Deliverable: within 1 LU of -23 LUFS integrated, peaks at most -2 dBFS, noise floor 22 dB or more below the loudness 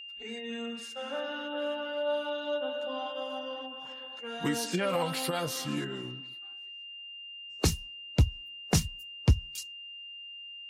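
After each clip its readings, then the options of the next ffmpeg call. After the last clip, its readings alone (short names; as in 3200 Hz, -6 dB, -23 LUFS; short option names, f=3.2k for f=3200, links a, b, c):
steady tone 2800 Hz; tone level -42 dBFS; loudness -33.5 LUFS; peak -13.5 dBFS; loudness target -23.0 LUFS
-> -af "bandreject=f=2.8k:w=30"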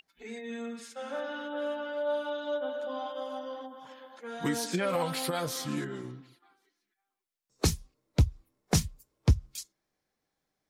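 steady tone none; loudness -33.0 LUFS; peak -13.0 dBFS; loudness target -23.0 LUFS
-> -af "volume=10dB"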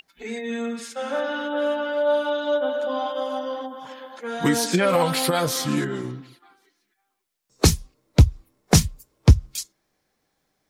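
loudness -23.0 LUFS; peak -3.0 dBFS; noise floor -74 dBFS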